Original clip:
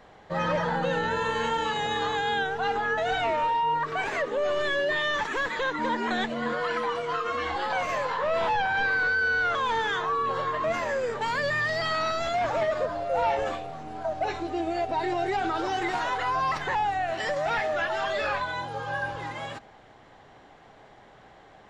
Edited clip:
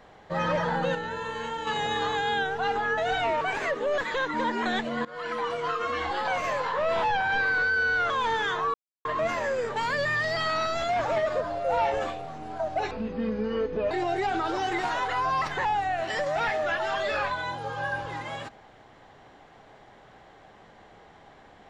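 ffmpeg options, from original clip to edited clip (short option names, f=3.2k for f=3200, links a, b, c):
-filter_complex "[0:a]asplit=10[a][b][c][d][e][f][g][h][i][j];[a]atrim=end=0.952[k];[b]atrim=start=0.948:end=1.672,asetpts=PTS-STARTPTS,volume=-6dB[l];[c]atrim=start=1.668:end=3.412[m];[d]atrim=start=3.918:end=4.492[n];[e]atrim=start=5.428:end=6.5,asetpts=PTS-STARTPTS,afade=t=out:st=1.068:d=0.004:c=hsin:silence=0.0749894[o];[f]atrim=start=6.5:end=10.19,asetpts=PTS-STARTPTS,afade=t=in:d=0.57:c=qsin:silence=0.0749894,afade=t=out:st=3.686:d=0.004:c=hsin[p];[g]atrim=start=10.19:end=10.5,asetpts=PTS-STARTPTS,volume=0[q];[h]atrim=start=10.5:end=14.364,asetpts=PTS-STARTPTS,afade=t=in:d=0.004:c=hsin[r];[i]atrim=start=14.36:end=15.01,asetpts=PTS-STARTPTS,asetrate=28665,aresample=44100[s];[j]atrim=start=15.006[t];[k][l]acrossfade=d=0.004:c1=hsin:c2=hsin[u];[u][m]acrossfade=d=0.004:c1=hsin:c2=hsin[v];[v][n]acrossfade=d=0.004:c1=hsin:c2=hsin[w];[o][p][q][r]concat=n=4:v=0:a=1[x];[w][x]acrossfade=d=0.004:c1=hsin:c2=hsin[y];[y][s]acrossfade=d=0.004:c1=hsin:c2=hsin[z];[z][t]acrossfade=d=0.004:c1=hsin:c2=hsin"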